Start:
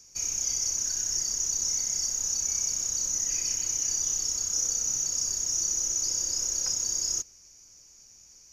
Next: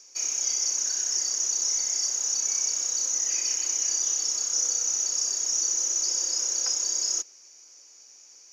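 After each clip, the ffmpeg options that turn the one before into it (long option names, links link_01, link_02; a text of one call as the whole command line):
ffmpeg -i in.wav -filter_complex "[0:a]highpass=frequency=240:width=0.5412,highpass=frequency=240:width=1.3066,acrossover=split=310 7500:gain=0.158 1 0.224[link_01][link_02][link_03];[link_01][link_02][link_03]amix=inputs=3:normalize=0,volume=4.5dB" out.wav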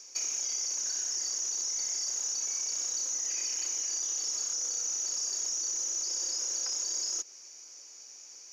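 ffmpeg -i in.wav -af "alimiter=limit=-21.5dB:level=0:latency=1:release=14,acompressor=threshold=-32dB:ratio=6,volume=2dB" out.wav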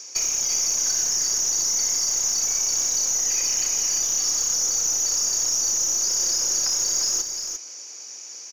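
ffmpeg -i in.wav -filter_complex "[0:a]asplit=2[link_01][link_02];[link_02]aeval=exprs='clip(val(0),-1,0.015)':channel_layout=same,volume=-4.5dB[link_03];[link_01][link_03]amix=inputs=2:normalize=0,aecho=1:1:348:0.473,volume=6dB" out.wav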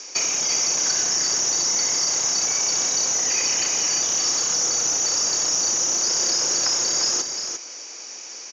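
ffmpeg -i in.wav -af "highpass=140,lowpass=4300,volume=8.5dB" out.wav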